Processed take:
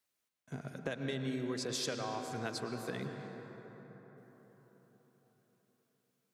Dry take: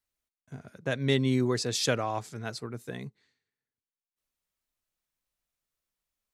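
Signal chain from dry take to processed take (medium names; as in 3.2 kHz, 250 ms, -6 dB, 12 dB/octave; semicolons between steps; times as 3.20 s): high-pass 150 Hz 12 dB/octave; compression 10:1, threshold -38 dBFS, peak gain reduction 17.5 dB; on a send: reverberation RT60 4.8 s, pre-delay 98 ms, DRR 4.5 dB; on the sum: trim +3 dB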